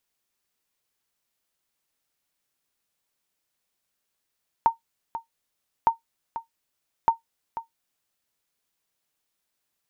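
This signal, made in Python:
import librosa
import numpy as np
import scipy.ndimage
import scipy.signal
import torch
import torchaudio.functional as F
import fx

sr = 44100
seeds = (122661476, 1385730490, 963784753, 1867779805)

y = fx.sonar_ping(sr, hz=915.0, decay_s=0.13, every_s=1.21, pings=3, echo_s=0.49, echo_db=-13.0, level_db=-9.5)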